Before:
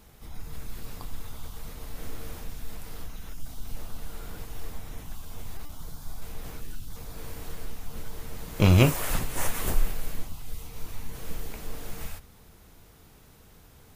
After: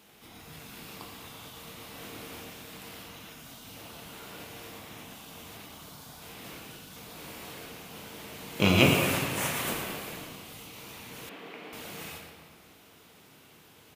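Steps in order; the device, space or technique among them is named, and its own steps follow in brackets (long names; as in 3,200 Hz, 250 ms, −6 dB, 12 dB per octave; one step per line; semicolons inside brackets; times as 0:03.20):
PA in a hall (high-pass filter 180 Hz 12 dB per octave; parametric band 2,900 Hz +7 dB 0.92 octaves; single-tap delay 115 ms −10 dB; convolution reverb RT60 2.0 s, pre-delay 17 ms, DRR 1.5 dB)
0:11.29–0:11.73: three-way crossover with the lows and the highs turned down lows −23 dB, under 190 Hz, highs −19 dB, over 3,400 Hz
level −2 dB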